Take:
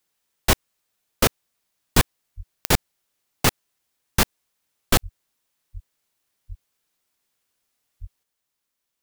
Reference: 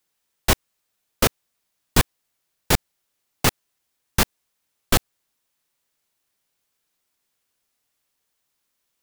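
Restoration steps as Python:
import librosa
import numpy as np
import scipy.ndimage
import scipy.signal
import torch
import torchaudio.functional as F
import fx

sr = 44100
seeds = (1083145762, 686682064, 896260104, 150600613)

y = fx.fix_declick_ar(x, sr, threshold=10.0)
y = fx.fix_deplosive(y, sr, at_s=(2.36, 5.02, 5.73, 6.48, 8.0))
y = fx.gain(y, sr, db=fx.steps((0.0, 0.0), (8.23, 5.0)))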